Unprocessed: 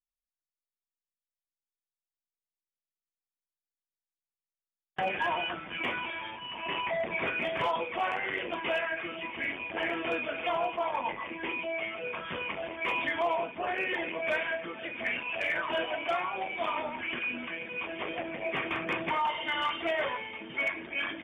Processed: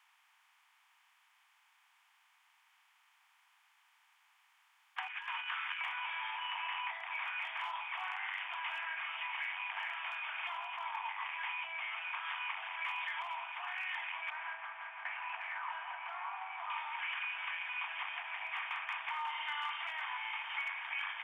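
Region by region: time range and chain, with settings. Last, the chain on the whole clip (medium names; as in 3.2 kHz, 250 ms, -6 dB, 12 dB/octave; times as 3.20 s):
5.07–5.81 s: inverse Chebyshev high-pass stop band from 350 Hz, stop band 60 dB + compressor with a negative ratio -41 dBFS, ratio -0.5
14.30–16.70 s: gate with hold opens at -26 dBFS, closes at -33 dBFS + low-pass 1.1 kHz + feedback delay 169 ms, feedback 49%, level -14.5 dB
whole clip: spectral levelling over time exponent 0.6; compression, threshold -37 dBFS; steep high-pass 800 Hz 72 dB/octave; trim +1 dB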